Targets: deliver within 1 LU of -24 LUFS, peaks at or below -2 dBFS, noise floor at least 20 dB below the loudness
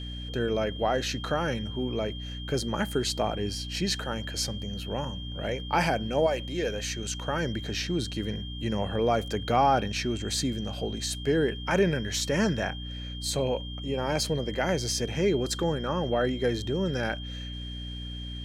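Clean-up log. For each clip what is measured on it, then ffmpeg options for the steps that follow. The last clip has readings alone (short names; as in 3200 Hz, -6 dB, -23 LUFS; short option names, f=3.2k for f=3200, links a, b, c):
hum 60 Hz; harmonics up to 300 Hz; hum level -35 dBFS; steady tone 3200 Hz; tone level -41 dBFS; loudness -29.0 LUFS; peak -11.0 dBFS; loudness target -24.0 LUFS
-> -af "bandreject=f=60:t=h:w=4,bandreject=f=120:t=h:w=4,bandreject=f=180:t=h:w=4,bandreject=f=240:t=h:w=4,bandreject=f=300:t=h:w=4"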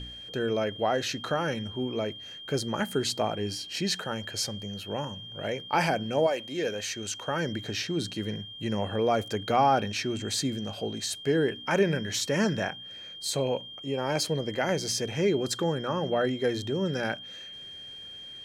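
hum none; steady tone 3200 Hz; tone level -41 dBFS
-> -af "bandreject=f=3.2k:w=30"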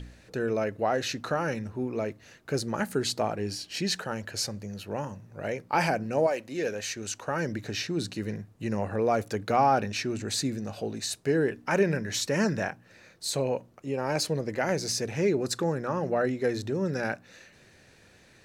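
steady tone none; loudness -29.5 LUFS; peak -11.0 dBFS; loudness target -24.0 LUFS
-> -af "volume=5.5dB"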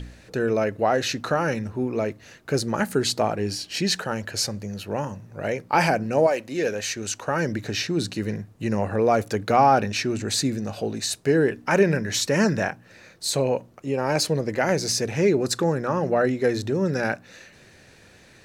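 loudness -24.0 LUFS; peak -5.5 dBFS; noise floor -52 dBFS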